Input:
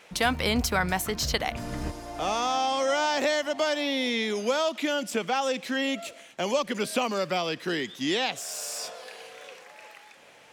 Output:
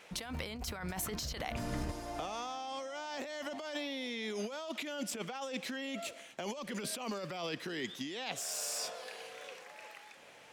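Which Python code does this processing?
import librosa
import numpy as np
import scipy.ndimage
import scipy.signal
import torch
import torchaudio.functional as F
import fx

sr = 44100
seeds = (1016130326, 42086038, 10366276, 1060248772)

y = fx.over_compress(x, sr, threshold_db=-32.0, ratio=-1.0)
y = y * 10.0 ** (-7.5 / 20.0)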